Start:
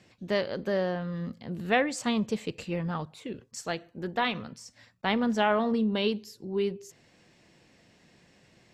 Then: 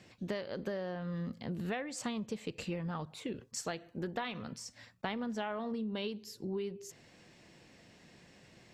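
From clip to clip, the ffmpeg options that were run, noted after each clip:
ffmpeg -i in.wav -af "acompressor=threshold=-35dB:ratio=12,volume=1dB" out.wav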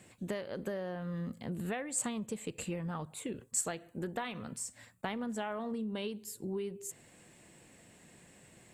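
ffmpeg -i in.wav -af "highshelf=frequency=6700:width_type=q:width=3:gain=8" out.wav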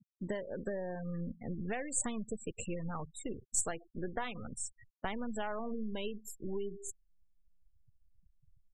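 ffmpeg -i in.wav -af "aeval=exprs='if(lt(val(0),0),0.708*val(0),val(0))':channel_layout=same,asubboost=boost=4:cutoff=75,afftfilt=real='re*gte(hypot(re,im),0.00891)':imag='im*gte(hypot(re,im),0.00891)':win_size=1024:overlap=0.75,volume=1.5dB" out.wav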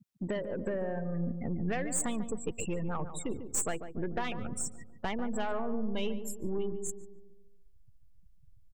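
ffmpeg -i in.wav -filter_complex "[0:a]asoftclip=type=tanh:threshold=-31dB,asplit=2[link_01][link_02];[link_02]adelay=145,lowpass=frequency=1000:poles=1,volume=-8.5dB,asplit=2[link_03][link_04];[link_04]adelay=145,lowpass=frequency=1000:poles=1,volume=0.52,asplit=2[link_05][link_06];[link_06]adelay=145,lowpass=frequency=1000:poles=1,volume=0.52,asplit=2[link_07][link_08];[link_08]adelay=145,lowpass=frequency=1000:poles=1,volume=0.52,asplit=2[link_09][link_10];[link_10]adelay=145,lowpass=frequency=1000:poles=1,volume=0.52,asplit=2[link_11][link_12];[link_12]adelay=145,lowpass=frequency=1000:poles=1,volume=0.52[link_13];[link_03][link_05][link_07][link_09][link_11][link_13]amix=inputs=6:normalize=0[link_14];[link_01][link_14]amix=inputs=2:normalize=0,volume=5.5dB" out.wav

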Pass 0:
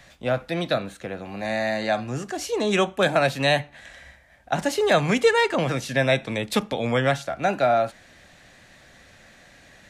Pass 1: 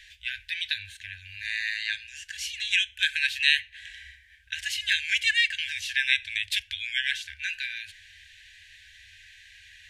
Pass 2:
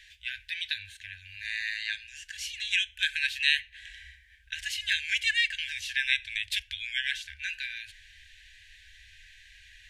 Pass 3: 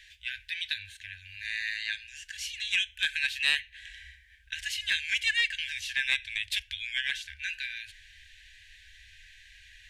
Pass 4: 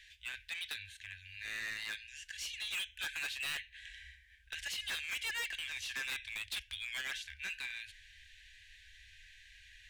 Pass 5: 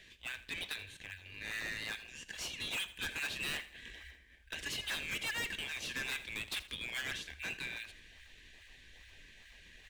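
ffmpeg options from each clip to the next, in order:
ffmpeg -i in.wav -af "equalizer=frequency=2900:width_type=o:width=0.93:gain=10.5,afftfilt=real='re*(1-between(b*sr/4096,100,1500))':imag='im*(1-between(b*sr/4096,100,1500))':win_size=4096:overlap=0.75,volume=-3.5dB" out.wav
ffmpeg -i in.wav -af "asubboost=boost=5:cutoff=53,volume=-3dB" out.wav
ffmpeg -i in.wav -af "aeval=exprs='(tanh(4.47*val(0)+0.05)-tanh(0.05))/4.47':channel_layout=same" out.wav
ffmpeg -i in.wav -af "asoftclip=type=hard:threshold=-31dB,volume=-4.5dB" out.wav
ffmpeg -i in.wav -filter_complex "[0:a]asplit=2[link_01][link_02];[link_02]acrusher=samples=35:mix=1:aa=0.000001:lfo=1:lforange=56:lforate=2.4,volume=-10dB[link_03];[link_01][link_03]amix=inputs=2:normalize=0,aecho=1:1:81|162|243:0.15|0.0598|0.0239" out.wav

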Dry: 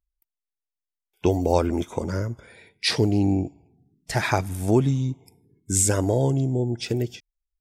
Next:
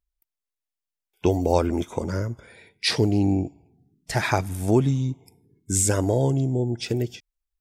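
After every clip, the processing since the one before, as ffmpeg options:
ffmpeg -i in.wav -af "deesser=0.3" out.wav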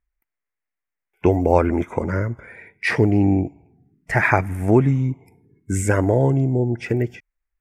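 ffmpeg -i in.wav -af "highshelf=frequency=2800:width_type=q:width=3:gain=-11,volume=4dB" out.wav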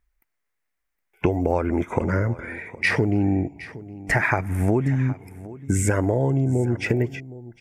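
ffmpeg -i in.wav -af "acompressor=threshold=-25dB:ratio=6,aecho=1:1:765:0.133,volume=6.5dB" out.wav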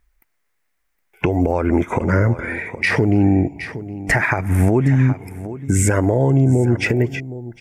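ffmpeg -i in.wav -af "alimiter=limit=-15.5dB:level=0:latency=1:release=181,volume=8.5dB" out.wav

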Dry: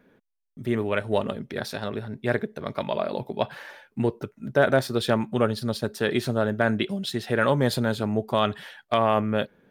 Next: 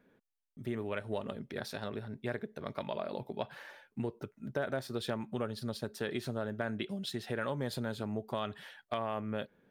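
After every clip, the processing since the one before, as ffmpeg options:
ffmpeg -i in.wav -af "acompressor=threshold=-25dB:ratio=3,volume=-8dB" out.wav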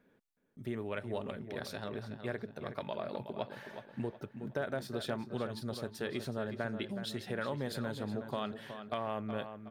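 ffmpeg -i in.wav -filter_complex "[0:a]asplit=2[link_01][link_02];[link_02]adelay=369,lowpass=frequency=3600:poles=1,volume=-9dB,asplit=2[link_03][link_04];[link_04]adelay=369,lowpass=frequency=3600:poles=1,volume=0.4,asplit=2[link_05][link_06];[link_06]adelay=369,lowpass=frequency=3600:poles=1,volume=0.4,asplit=2[link_07][link_08];[link_08]adelay=369,lowpass=frequency=3600:poles=1,volume=0.4[link_09];[link_01][link_03][link_05][link_07][link_09]amix=inputs=5:normalize=0,volume=-1.5dB" out.wav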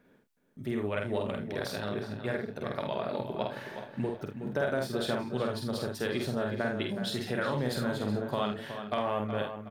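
ffmpeg -i in.wav -af "aecho=1:1:48|78:0.668|0.266,volume=4.5dB" out.wav

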